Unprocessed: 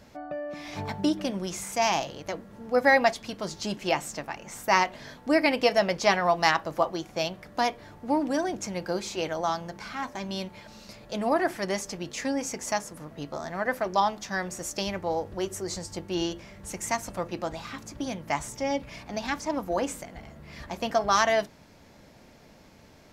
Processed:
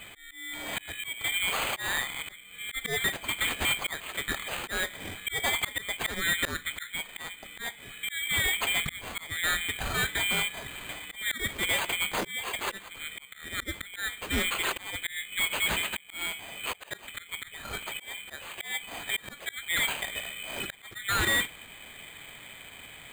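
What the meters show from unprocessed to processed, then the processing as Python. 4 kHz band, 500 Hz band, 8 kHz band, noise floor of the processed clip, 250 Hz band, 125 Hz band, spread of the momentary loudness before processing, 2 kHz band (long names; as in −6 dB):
+5.0 dB, −13.5 dB, +2.5 dB, −50 dBFS, −12.5 dB, −3.5 dB, 15 LU, +2.5 dB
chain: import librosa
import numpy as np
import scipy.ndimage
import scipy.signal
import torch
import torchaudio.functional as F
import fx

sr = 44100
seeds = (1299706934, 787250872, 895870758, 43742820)

y = fx.band_shuffle(x, sr, order='2413')
y = fx.low_shelf(y, sr, hz=120.0, db=6.5)
y = fx.auto_swell(y, sr, attack_ms=539.0)
y = np.repeat(y[::8], 8)[:len(y)]
y = np.clip(10.0 ** (30.0 / 20.0) * y, -1.0, 1.0) / 10.0 ** (30.0 / 20.0)
y = y * librosa.db_to_amplitude(7.0)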